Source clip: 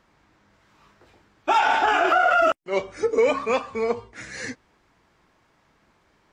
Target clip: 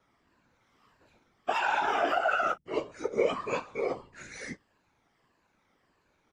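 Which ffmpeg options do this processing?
ffmpeg -i in.wav -filter_complex "[0:a]afftfilt=real='re*pow(10,8/40*sin(2*PI*(1.4*log(max(b,1)*sr/1024/100)/log(2)-(-1.6)*(pts-256)/sr)))':imag='im*pow(10,8/40*sin(2*PI*(1.4*log(max(b,1)*sr/1024/100)/log(2)-(-1.6)*(pts-256)/sr)))':win_size=1024:overlap=0.75,bandreject=frequency=60:width_type=h:width=6,bandreject=frequency=120:width_type=h:width=6,bandreject=frequency=180:width_type=h:width=6,asplit=2[link_01][link_02];[link_02]adelay=16,volume=-4dB[link_03];[link_01][link_03]amix=inputs=2:normalize=0,aecho=1:1:12|35:0.178|0.133,afftfilt=real='hypot(re,im)*cos(2*PI*random(0))':imag='hypot(re,im)*sin(2*PI*random(1))':win_size=512:overlap=0.75,volume=-4.5dB" out.wav

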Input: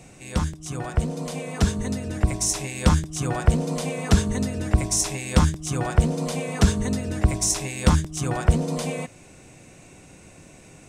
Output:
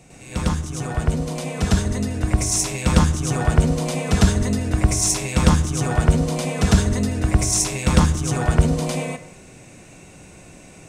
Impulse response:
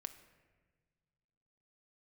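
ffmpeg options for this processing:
-filter_complex "[0:a]asplit=2[link_01][link_02];[1:a]atrim=start_sample=2205,afade=type=out:start_time=0.24:duration=0.01,atrim=end_sample=11025,adelay=103[link_03];[link_02][link_03]afir=irnorm=-1:irlink=0,volume=9dB[link_04];[link_01][link_04]amix=inputs=2:normalize=0,volume=-2.5dB"

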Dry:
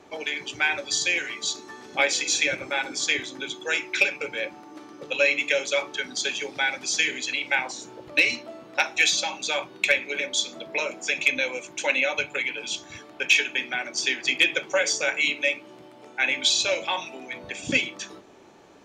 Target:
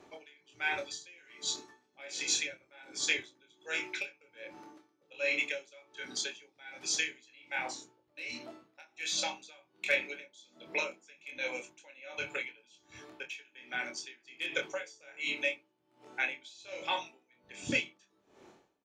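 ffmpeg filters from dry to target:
ffmpeg -i in.wav -filter_complex "[0:a]asplit=2[link_01][link_02];[link_02]adelay=25,volume=-5dB[link_03];[link_01][link_03]amix=inputs=2:normalize=0,aeval=exprs='val(0)*pow(10,-27*(0.5-0.5*cos(2*PI*1.3*n/s))/20)':channel_layout=same,volume=-6.5dB" out.wav

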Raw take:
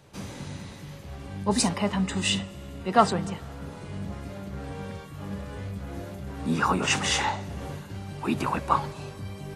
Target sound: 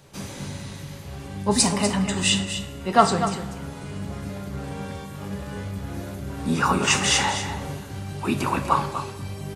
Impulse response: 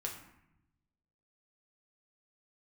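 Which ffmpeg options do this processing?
-filter_complex "[0:a]aecho=1:1:245:0.316,asplit=2[link_01][link_02];[1:a]atrim=start_sample=2205,highshelf=frequency=3200:gain=12[link_03];[link_02][link_03]afir=irnorm=-1:irlink=0,volume=-4.5dB[link_04];[link_01][link_04]amix=inputs=2:normalize=0,volume=-1dB"

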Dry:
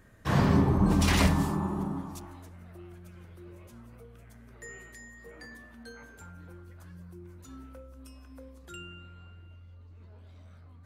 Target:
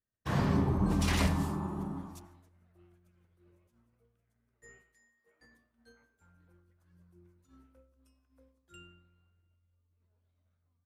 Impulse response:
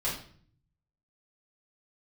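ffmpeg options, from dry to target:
-filter_complex "[0:a]agate=range=-33dB:threshold=-38dB:ratio=3:detection=peak,asettb=1/sr,asplit=3[link_01][link_02][link_03];[link_01]atrim=end=4.824[link_04];[link_02]atrim=start=4.82:end=5.41,asetpts=PTS-STARTPTS,afade=type=in:duration=0.004:curve=qsin,afade=type=out:start_time=0.586:duration=0.004:curve=qsin,highpass=frequency=570:poles=1[link_05];[link_03]atrim=start=5.406[link_06];[link_04][link_05]acrossfade=duration=0.004:curve1=hsin:curve2=qsin[link_07];[link_07][link_06]acrossfade=duration=0.004:curve1=qsin:curve2=hsin,asplit=2[link_08][link_09];[1:a]atrim=start_sample=2205,adelay=85[link_10];[link_09][link_10]afir=irnorm=-1:irlink=0,volume=-26dB[link_11];[link_08][link_11]amix=inputs=2:normalize=0,aresample=32000,aresample=44100,volume=-5.5dB"

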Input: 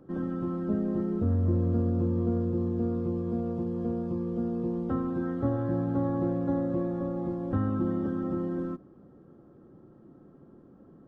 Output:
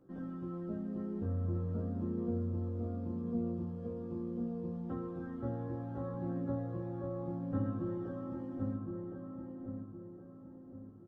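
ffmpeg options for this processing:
ffmpeg -i in.wav -filter_complex "[0:a]flanger=delay=15.5:depth=4.2:speed=0.35,asplit=2[link_01][link_02];[link_02]adelay=1065,lowpass=frequency=1300:poles=1,volume=-3dB,asplit=2[link_03][link_04];[link_04]adelay=1065,lowpass=frequency=1300:poles=1,volume=0.43,asplit=2[link_05][link_06];[link_06]adelay=1065,lowpass=frequency=1300:poles=1,volume=0.43,asplit=2[link_07][link_08];[link_08]adelay=1065,lowpass=frequency=1300:poles=1,volume=0.43,asplit=2[link_09][link_10];[link_10]adelay=1065,lowpass=frequency=1300:poles=1,volume=0.43,asplit=2[link_11][link_12];[link_12]adelay=1065,lowpass=frequency=1300:poles=1,volume=0.43[link_13];[link_03][link_05][link_07][link_09][link_11][link_13]amix=inputs=6:normalize=0[link_14];[link_01][link_14]amix=inputs=2:normalize=0,volume=-7.5dB" out.wav

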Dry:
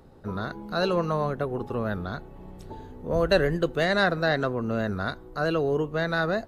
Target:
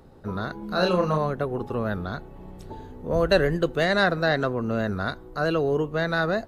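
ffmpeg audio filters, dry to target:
ffmpeg -i in.wav -filter_complex "[0:a]asettb=1/sr,asplit=3[link_01][link_02][link_03];[link_01]atrim=end=0.594[link_04];[link_02]atrim=start=0.59:end=1.18,asetpts=PTS-STARTPTS,afade=type=in:duration=0.004:curve=qsin,afade=type=out:start_time=0.586:duration=0.004:curve=qsin,asplit=2[link_05][link_06];[link_06]adelay=33,volume=-3.5dB[link_07];[link_05][link_07]amix=inputs=2:normalize=0,atrim=end_sample=26019[link_08];[link_03]atrim=start=1.176[link_09];[link_04][link_08]acrossfade=duration=0.004:curve1=hsin:curve2=qsin[link_10];[link_10][link_09]acrossfade=duration=0.004:curve1=qsin:curve2=hsin,volume=1.5dB" out.wav

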